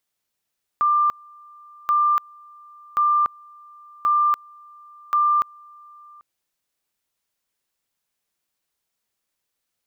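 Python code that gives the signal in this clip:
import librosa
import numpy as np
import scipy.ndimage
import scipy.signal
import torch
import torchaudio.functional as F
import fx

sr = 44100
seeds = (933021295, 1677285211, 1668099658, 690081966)

y = fx.two_level_tone(sr, hz=1190.0, level_db=-15.0, drop_db=28.0, high_s=0.29, low_s=0.79, rounds=5)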